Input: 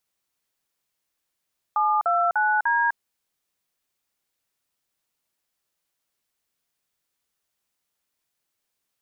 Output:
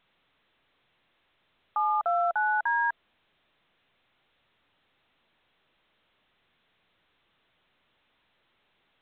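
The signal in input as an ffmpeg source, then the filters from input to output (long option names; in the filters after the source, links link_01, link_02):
-f lavfi -i "aevalsrc='0.0891*clip(min(mod(t,0.298),0.252-mod(t,0.298))/0.002,0,1)*(eq(floor(t/0.298),0)*(sin(2*PI*852*mod(t,0.298))+sin(2*PI*1209*mod(t,0.298)))+eq(floor(t/0.298),1)*(sin(2*PI*697*mod(t,0.298))+sin(2*PI*1336*mod(t,0.298)))+eq(floor(t/0.298),2)*(sin(2*PI*852*mod(t,0.298))+sin(2*PI*1477*mod(t,0.298)))+eq(floor(t/0.298),3)*(sin(2*PI*941*mod(t,0.298))+sin(2*PI*1633*mod(t,0.298))))':duration=1.192:sample_rate=44100"
-af "adynamicequalizer=threshold=0.0141:dfrequency=670:dqfactor=5.7:tfrequency=670:tqfactor=5.7:attack=5:release=100:ratio=0.375:range=3:mode=boostabove:tftype=bell,alimiter=limit=-19.5dB:level=0:latency=1:release=133" -ar 8000 -c:a pcm_alaw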